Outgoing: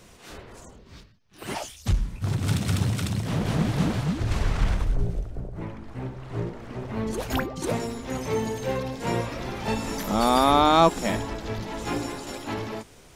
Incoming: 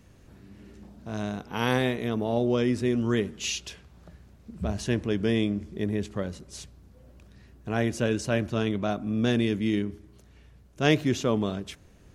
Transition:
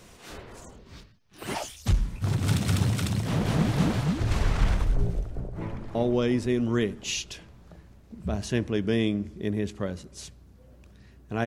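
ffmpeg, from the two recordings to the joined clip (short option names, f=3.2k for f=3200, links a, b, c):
-filter_complex "[0:a]apad=whole_dur=11.46,atrim=end=11.46,atrim=end=5.952[a];[1:a]atrim=start=2.308:end=7.82[b];[a][b]acrossfade=d=0.004:c1=hsin:c2=hsin,asplit=2[c][d];[d]afade=t=in:st=5.27:d=0.01,afade=t=out:st=5.95:d=0.01,aecho=0:1:360|720|1080|1440|1800|2160|2520|2880|3240:0.473151|0.307548|0.199906|0.129939|0.0844605|0.0548993|0.0356845|0.023195|0.0150767[e];[c][e]amix=inputs=2:normalize=0"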